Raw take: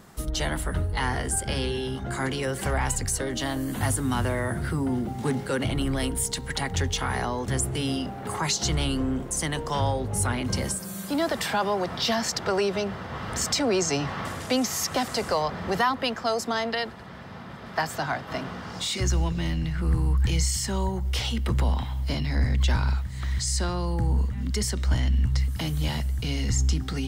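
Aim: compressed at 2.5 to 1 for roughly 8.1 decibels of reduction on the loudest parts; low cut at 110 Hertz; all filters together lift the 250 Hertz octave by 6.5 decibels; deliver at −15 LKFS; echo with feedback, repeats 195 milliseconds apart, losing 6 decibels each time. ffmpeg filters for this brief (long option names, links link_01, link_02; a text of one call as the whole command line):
ffmpeg -i in.wav -af "highpass=110,equalizer=frequency=250:width_type=o:gain=8,acompressor=threshold=-29dB:ratio=2.5,aecho=1:1:195|390|585|780|975|1170:0.501|0.251|0.125|0.0626|0.0313|0.0157,volume=14.5dB" out.wav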